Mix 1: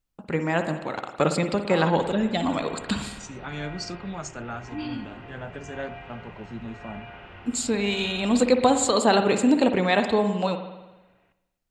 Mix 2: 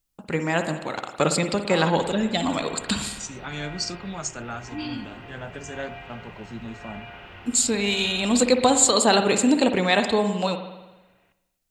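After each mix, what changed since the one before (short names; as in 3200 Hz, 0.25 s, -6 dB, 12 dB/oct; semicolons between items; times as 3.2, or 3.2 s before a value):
master: add high shelf 3800 Hz +11 dB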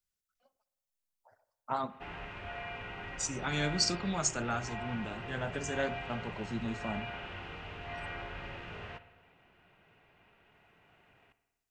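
first voice: muted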